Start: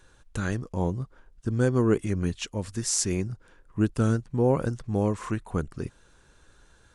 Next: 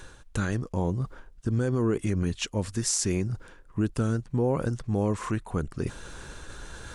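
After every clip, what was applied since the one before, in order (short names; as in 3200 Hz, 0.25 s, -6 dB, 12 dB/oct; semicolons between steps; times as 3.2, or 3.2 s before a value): reverse; upward compressor, threshold -30 dBFS; reverse; limiter -19 dBFS, peak gain reduction 8.5 dB; gain +2.5 dB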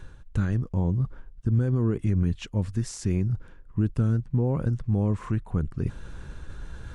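tone controls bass +11 dB, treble -8 dB; gain -5.5 dB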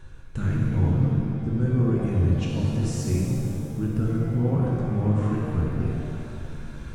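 shimmer reverb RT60 2.2 s, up +7 st, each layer -8 dB, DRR -4 dB; gain -3.5 dB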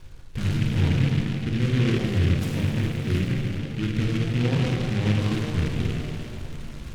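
steep low-pass 3400 Hz 36 dB/oct; noise-modulated delay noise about 2200 Hz, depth 0.14 ms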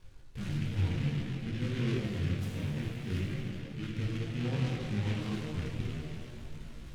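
detuned doubles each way 21 cents; gain -6.5 dB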